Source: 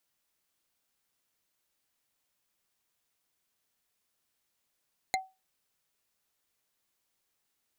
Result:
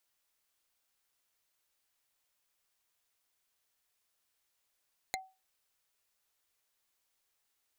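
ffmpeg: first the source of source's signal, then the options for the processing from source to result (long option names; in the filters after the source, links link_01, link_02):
-f lavfi -i "aevalsrc='0.0668*pow(10,-3*t/0.25)*sin(2*PI*759*t)+0.0596*pow(10,-3*t/0.074)*sin(2*PI*2092.6*t)+0.0531*pow(10,-3*t/0.033)*sin(2*PI*4101.6*t)+0.0473*pow(10,-3*t/0.018)*sin(2*PI*6780.1*t)+0.0422*pow(10,-3*t/0.011)*sin(2*PI*10125.1*t)':duration=0.45:sample_rate=44100"
-af "equalizer=frequency=190:width=0.73:gain=-8.5,acompressor=threshold=-35dB:ratio=6"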